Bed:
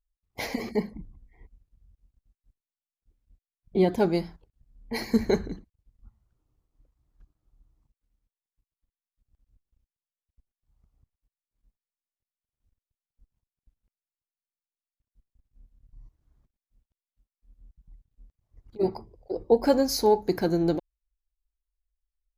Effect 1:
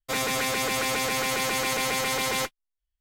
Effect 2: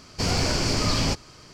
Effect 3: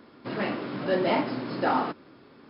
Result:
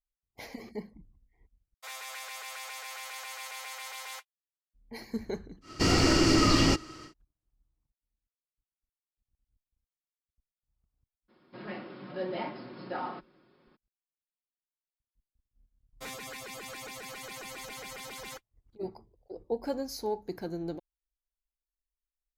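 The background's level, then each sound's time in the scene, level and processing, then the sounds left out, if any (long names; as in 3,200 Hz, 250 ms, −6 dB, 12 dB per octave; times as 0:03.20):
bed −12 dB
0:01.74: overwrite with 1 −14 dB + high-pass filter 690 Hz 24 dB per octave
0:05.61: mix in 2 −2.5 dB, fades 0.10 s + hollow resonant body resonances 320/1,300/1,900/2,800 Hz, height 15 dB, ringing for 55 ms
0:11.28: mix in 3 −12.5 dB, fades 0.02 s + comb filter 5.5 ms, depth 51%
0:15.92: mix in 1 −13.5 dB + reverb reduction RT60 1.2 s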